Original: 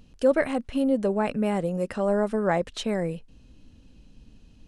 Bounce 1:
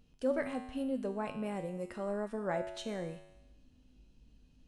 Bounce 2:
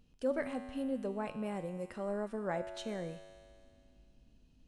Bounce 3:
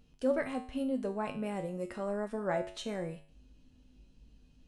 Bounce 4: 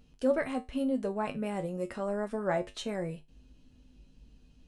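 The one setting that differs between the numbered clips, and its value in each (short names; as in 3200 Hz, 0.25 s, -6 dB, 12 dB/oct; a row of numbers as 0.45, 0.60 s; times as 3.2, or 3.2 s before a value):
resonator, decay: 1, 2.2, 0.46, 0.21 s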